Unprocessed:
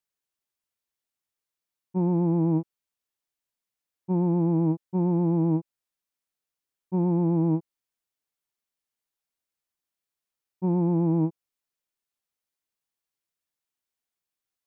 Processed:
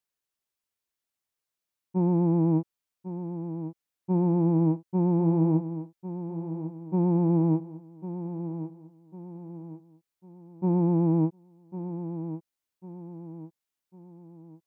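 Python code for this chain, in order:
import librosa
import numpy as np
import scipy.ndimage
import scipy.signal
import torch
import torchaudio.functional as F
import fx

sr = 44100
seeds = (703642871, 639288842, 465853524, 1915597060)

y = fx.echo_feedback(x, sr, ms=1100, feedback_pct=42, wet_db=-11)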